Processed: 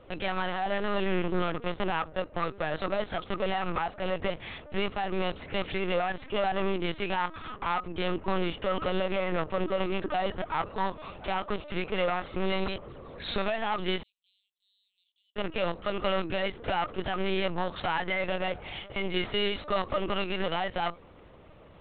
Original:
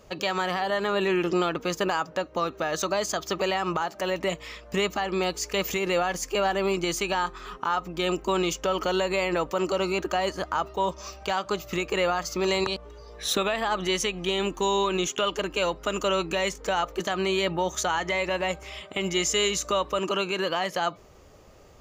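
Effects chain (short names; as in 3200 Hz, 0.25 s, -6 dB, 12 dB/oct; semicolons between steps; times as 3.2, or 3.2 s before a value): one-sided clip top -30 dBFS; LPC vocoder at 8 kHz pitch kept; 14.03–15.36 inverse Chebyshev high-pass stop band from 1400 Hz, stop band 80 dB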